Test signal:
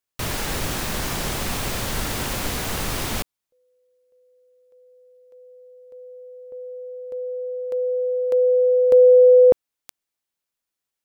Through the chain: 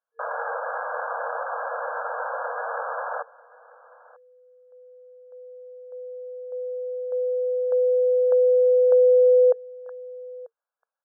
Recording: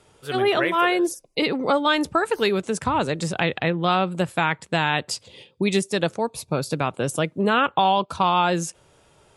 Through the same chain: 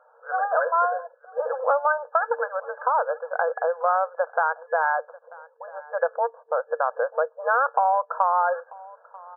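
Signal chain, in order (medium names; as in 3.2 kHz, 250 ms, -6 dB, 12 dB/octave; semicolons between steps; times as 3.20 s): FFT band-pass 460–1700 Hz; compression 3:1, threshold -22 dBFS; on a send: delay 940 ms -22 dB; on the sum: trim +4 dB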